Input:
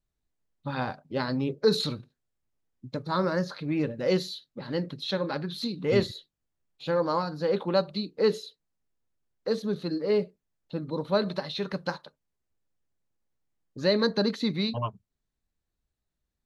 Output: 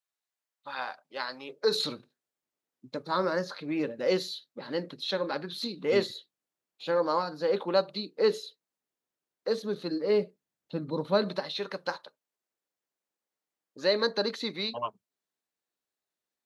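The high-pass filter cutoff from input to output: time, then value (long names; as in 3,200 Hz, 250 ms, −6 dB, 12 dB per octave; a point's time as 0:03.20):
0:01.43 850 Hz
0:01.87 290 Hz
0:09.63 290 Hz
0:10.99 120 Hz
0:11.67 390 Hz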